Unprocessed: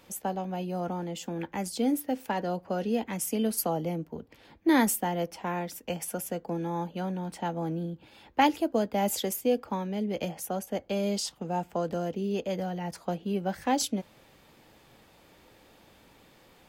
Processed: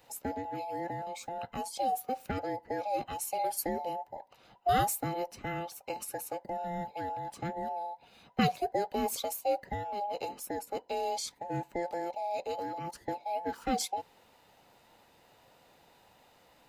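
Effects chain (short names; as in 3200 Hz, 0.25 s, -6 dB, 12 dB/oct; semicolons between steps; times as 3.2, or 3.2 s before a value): band inversion scrambler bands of 1000 Hz; gain -4.5 dB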